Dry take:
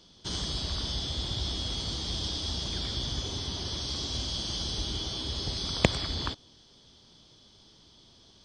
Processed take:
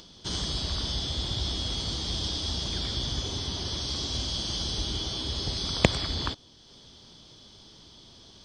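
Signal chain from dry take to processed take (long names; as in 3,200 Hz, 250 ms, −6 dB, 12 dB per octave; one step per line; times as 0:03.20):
upward compression, threshold −47 dBFS
level +2 dB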